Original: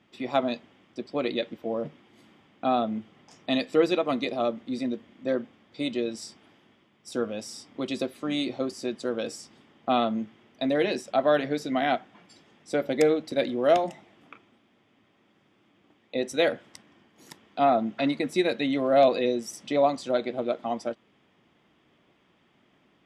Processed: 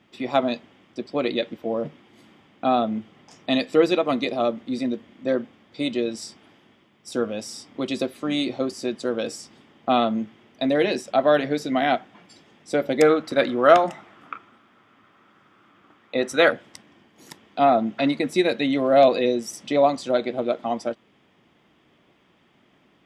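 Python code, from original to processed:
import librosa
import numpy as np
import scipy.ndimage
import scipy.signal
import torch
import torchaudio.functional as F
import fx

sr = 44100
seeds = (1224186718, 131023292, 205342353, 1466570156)

y = fx.peak_eq(x, sr, hz=1300.0, db=13.5, octaves=0.77, at=(13.02, 16.51))
y = F.gain(torch.from_numpy(y), 4.0).numpy()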